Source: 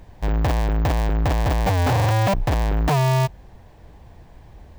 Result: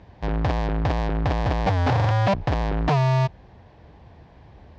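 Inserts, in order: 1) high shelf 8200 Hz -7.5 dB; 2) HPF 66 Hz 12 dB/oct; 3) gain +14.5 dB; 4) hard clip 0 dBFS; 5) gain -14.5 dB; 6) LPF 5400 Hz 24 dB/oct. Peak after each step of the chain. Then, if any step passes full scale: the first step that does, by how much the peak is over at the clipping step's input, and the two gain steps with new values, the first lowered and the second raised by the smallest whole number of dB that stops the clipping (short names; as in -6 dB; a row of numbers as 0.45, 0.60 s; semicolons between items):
-15.0, -10.0, +4.5, 0.0, -14.5, -13.5 dBFS; step 3, 4.5 dB; step 3 +9.5 dB, step 5 -9.5 dB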